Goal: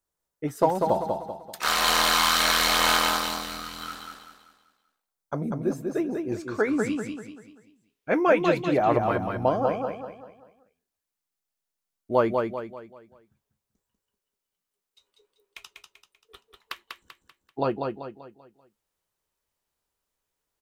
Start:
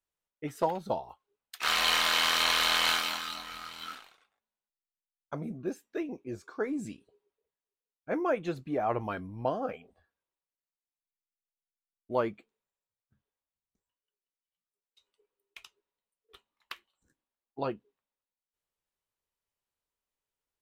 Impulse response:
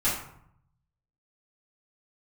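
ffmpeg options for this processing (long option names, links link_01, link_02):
-af "asetnsamples=nb_out_samples=441:pad=0,asendcmd='6.32 equalizer g 6;8.79 equalizer g -3',equalizer=frequency=2700:width_type=o:width=1.3:gain=-8.5,aecho=1:1:194|388|582|776|970:0.596|0.238|0.0953|0.0381|0.0152,volume=7.5dB"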